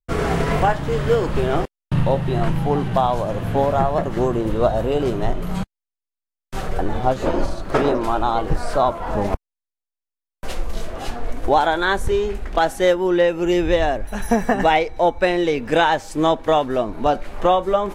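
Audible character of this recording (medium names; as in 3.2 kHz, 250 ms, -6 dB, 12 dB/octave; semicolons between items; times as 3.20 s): noise floor -87 dBFS; spectral tilt -5.0 dB/octave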